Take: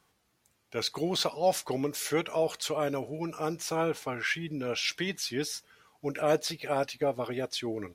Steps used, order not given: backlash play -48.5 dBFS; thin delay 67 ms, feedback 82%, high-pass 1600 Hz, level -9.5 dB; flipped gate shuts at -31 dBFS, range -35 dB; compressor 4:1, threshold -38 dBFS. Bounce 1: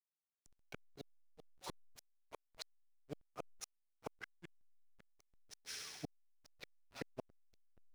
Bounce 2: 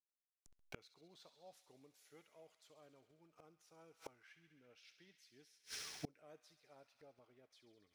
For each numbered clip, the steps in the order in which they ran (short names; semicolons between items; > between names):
thin delay > compressor > flipped gate > backlash; thin delay > backlash > flipped gate > compressor